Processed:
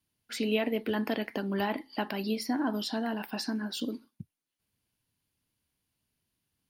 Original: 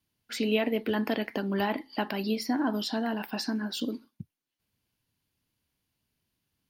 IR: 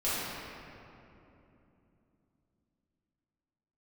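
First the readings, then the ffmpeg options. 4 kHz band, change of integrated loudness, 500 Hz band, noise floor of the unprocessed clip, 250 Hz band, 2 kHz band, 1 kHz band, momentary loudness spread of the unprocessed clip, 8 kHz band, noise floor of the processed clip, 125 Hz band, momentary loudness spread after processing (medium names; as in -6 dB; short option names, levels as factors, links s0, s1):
-2.0 dB, -2.0 dB, -2.0 dB, -85 dBFS, -2.0 dB, -2.0 dB, -2.0 dB, 12 LU, -0.5 dB, under -85 dBFS, -2.0 dB, 11 LU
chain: -af "equalizer=f=9900:w=2.8:g=5.5,volume=0.794"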